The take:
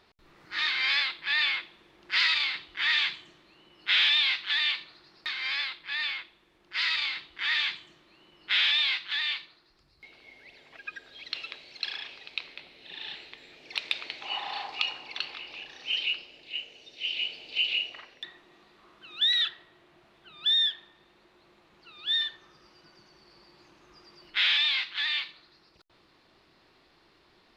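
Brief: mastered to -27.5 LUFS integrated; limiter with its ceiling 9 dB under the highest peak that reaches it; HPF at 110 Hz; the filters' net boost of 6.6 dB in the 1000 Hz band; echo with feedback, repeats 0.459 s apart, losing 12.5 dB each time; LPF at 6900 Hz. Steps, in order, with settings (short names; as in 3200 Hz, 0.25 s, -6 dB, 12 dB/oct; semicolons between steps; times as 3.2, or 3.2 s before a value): HPF 110 Hz; LPF 6900 Hz; bell 1000 Hz +8.5 dB; limiter -18.5 dBFS; feedback echo 0.459 s, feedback 24%, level -12.5 dB; gain +1 dB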